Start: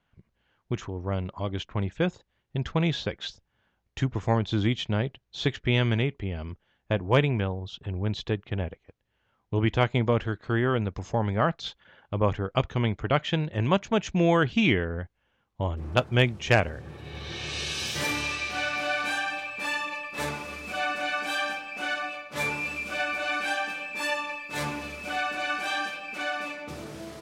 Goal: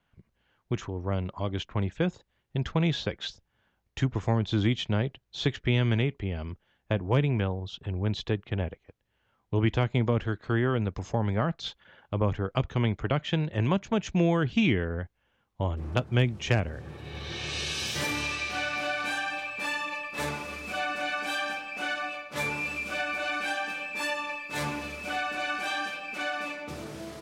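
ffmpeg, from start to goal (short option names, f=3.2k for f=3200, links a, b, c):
-filter_complex "[0:a]acrossover=split=330[a][b];[b]acompressor=threshold=-27dB:ratio=5[c];[a][c]amix=inputs=2:normalize=0"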